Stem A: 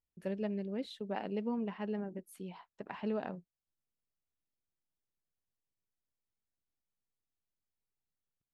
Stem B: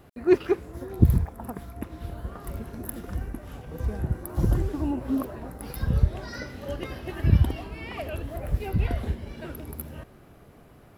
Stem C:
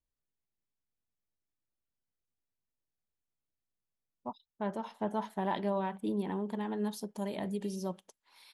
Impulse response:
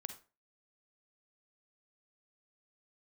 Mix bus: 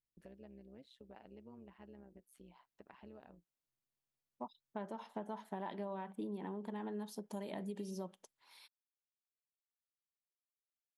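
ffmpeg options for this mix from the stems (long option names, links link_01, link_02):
-filter_complex "[0:a]acompressor=threshold=-52dB:ratio=2.5,tremolo=f=130:d=0.71,volume=-4.5dB[link_01];[2:a]highpass=150,adynamicequalizer=threshold=0.00224:dfrequency=2600:dqfactor=0.7:tfrequency=2600:tqfactor=0.7:attack=5:release=100:ratio=0.375:range=2:mode=cutabove:tftype=highshelf,adelay=150,volume=-2.5dB[link_02];[link_01][link_02]amix=inputs=2:normalize=0,acompressor=threshold=-39dB:ratio=6"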